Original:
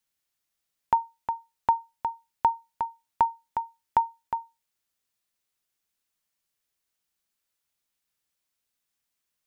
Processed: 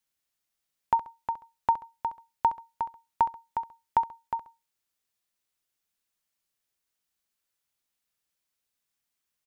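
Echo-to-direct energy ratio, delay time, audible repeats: −13.5 dB, 67 ms, 2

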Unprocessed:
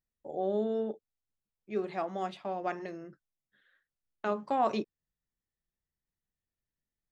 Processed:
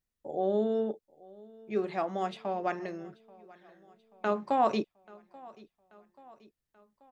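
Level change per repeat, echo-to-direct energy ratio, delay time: −5.0 dB, −21.5 dB, 834 ms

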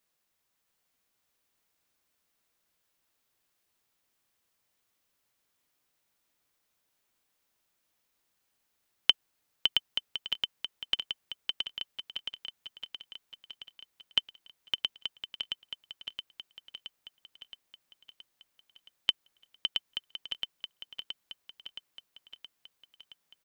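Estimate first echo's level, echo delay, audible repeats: −5.0 dB, 671 ms, 7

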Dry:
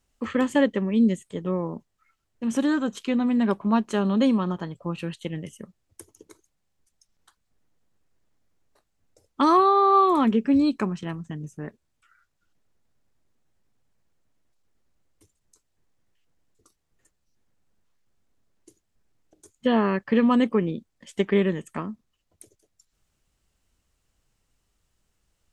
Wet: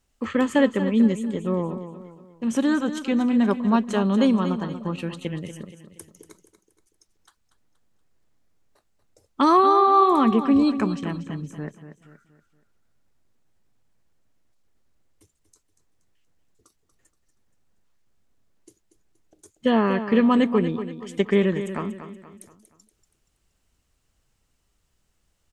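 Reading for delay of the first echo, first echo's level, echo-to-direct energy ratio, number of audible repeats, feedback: 237 ms, −11.0 dB, −10.0 dB, 4, 42%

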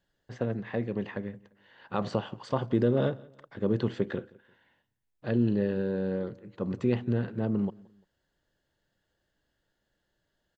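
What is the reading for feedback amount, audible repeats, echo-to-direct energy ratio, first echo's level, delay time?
37%, 2, −23.5 dB, −24.0 dB, 173 ms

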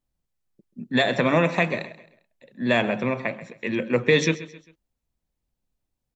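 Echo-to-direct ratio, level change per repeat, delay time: −16.0 dB, −8.0 dB, 133 ms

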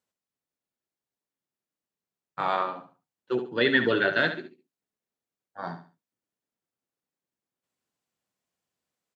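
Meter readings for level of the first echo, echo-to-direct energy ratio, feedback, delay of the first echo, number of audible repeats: −10.0 dB, −9.5 dB, 29%, 70 ms, 3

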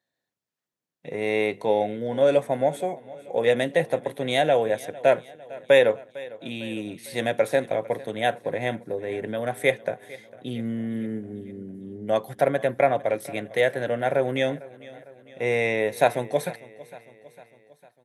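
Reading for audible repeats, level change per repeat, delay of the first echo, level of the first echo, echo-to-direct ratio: 3, −5.0 dB, 453 ms, −20.0 dB, −18.5 dB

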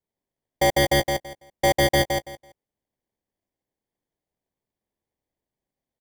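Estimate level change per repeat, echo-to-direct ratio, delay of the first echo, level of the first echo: −14.0 dB, −5.0 dB, 166 ms, −5.0 dB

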